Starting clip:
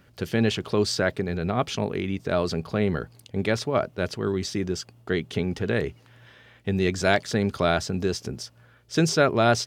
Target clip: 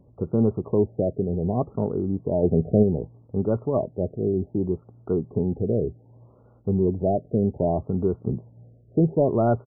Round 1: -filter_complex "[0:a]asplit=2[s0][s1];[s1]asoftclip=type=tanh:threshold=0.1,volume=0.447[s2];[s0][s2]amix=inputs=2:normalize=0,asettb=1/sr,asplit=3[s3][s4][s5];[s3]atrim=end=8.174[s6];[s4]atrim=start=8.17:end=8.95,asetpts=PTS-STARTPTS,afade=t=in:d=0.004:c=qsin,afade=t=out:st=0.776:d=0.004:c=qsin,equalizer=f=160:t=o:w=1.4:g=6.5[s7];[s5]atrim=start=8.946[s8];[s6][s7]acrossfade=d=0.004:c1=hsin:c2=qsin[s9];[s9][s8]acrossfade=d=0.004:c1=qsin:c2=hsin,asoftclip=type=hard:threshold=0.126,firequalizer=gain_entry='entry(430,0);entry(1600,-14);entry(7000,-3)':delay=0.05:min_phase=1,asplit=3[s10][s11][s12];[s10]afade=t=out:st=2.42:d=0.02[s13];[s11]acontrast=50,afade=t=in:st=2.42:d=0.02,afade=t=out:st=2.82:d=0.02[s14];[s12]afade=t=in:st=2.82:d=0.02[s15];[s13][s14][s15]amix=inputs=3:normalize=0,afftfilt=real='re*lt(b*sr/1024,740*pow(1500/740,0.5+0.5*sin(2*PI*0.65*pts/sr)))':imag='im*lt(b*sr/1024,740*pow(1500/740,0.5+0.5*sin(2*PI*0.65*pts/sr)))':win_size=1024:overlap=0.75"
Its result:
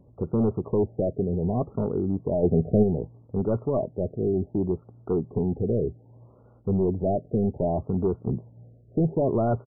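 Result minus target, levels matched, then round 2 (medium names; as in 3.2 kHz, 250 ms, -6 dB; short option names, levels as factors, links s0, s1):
hard clipper: distortion +14 dB
-filter_complex "[0:a]asplit=2[s0][s1];[s1]asoftclip=type=tanh:threshold=0.1,volume=0.447[s2];[s0][s2]amix=inputs=2:normalize=0,asettb=1/sr,asplit=3[s3][s4][s5];[s3]atrim=end=8.174[s6];[s4]atrim=start=8.17:end=8.95,asetpts=PTS-STARTPTS,afade=t=in:d=0.004:c=qsin,afade=t=out:st=0.776:d=0.004:c=qsin,equalizer=f=160:t=o:w=1.4:g=6.5[s7];[s5]atrim=start=8.946[s8];[s6][s7]acrossfade=d=0.004:c1=hsin:c2=qsin[s9];[s9][s8]acrossfade=d=0.004:c1=qsin:c2=hsin,asoftclip=type=hard:threshold=0.299,firequalizer=gain_entry='entry(430,0);entry(1600,-14);entry(7000,-3)':delay=0.05:min_phase=1,asplit=3[s10][s11][s12];[s10]afade=t=out:st=2.42:d=0.02[s13];[s11]acontrast=50,afade=t=in:st=2.42:d=0.02,afade=t=out:st=2.82:d=0.02[s14];[s12]afade=t=in:st=2.82:d=0.02[s15];[s13][s14][s15]amix=inputs=3:normalize=0,afftfilt=real='re*lt(b*sr/1024,740*pow(1500/740,0.5+0.5*sin(2*PI*0.65*pts/sr)))':imag='im*lt(b*sr/1024,740*pow(1500/740,0.5+0.5*sin(2*PI*0.65*pts/sr)))':win_size=1024:overlap=0.75"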